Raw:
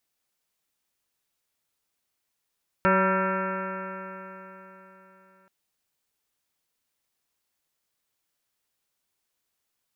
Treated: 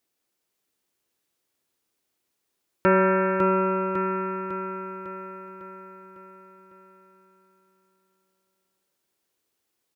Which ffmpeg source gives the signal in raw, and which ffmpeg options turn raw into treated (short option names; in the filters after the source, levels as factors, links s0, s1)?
-f lavfi -i "aevalsrc='0.0631*pow(10,-3*t/3.84)*sin(2*PI*188.13*t)+0.0422*pow(10,-3*t/3.84)*sin(2*PI*377.05*t)+0.0668*pow(10,-3*t/3.84)*sin(2*PI*567.54*t)+0.00708*pow(10,-3*t/3.84)*sin(2*PI*760.38*t)+0.0531*pow(10,-3*t/3.84)*sin(2*PI*956.31*t)+0.0141*pow(10,-3*t/3.84)*sin(2*PI*1156.08*t)+0.0794*pow(10,-3*t/3.84)*sin(2*PI*1360.39*t)+0.0355*pow(10,-3*t/3.84)*sin(2*PI*1569.93*t)+0.0316*pow(10,-3*t/3.84)*sin(2*PI*1785.36*t)+0.00668*pow(10,-3*t/3.84)*sin(2*PI*2007.29*t)+0.0168*pow(10,-3*t/3.84)*sin(2*PI*2236.31*t)+0.01*pow(10,-3*t/3.84)*sin(2*PI*2472.97*t)+0.00944*pow(10,-3*t/3.84)*sin(2*PI*2717.79*t)':d=2.63:s=44100"
-filter_complex "[0:a]highpass=45,equalizer=f=350:w=1.3:g=9,asplit=2[s0][s1];[s1]aecho=0:1:552|1104|1656|2208|2760|3312|3864:0.501|0.276|0.152|0.0834|0.0459|0.0252|0.0139[s2];[s0][s2]amix=inputs=2:normalize=0"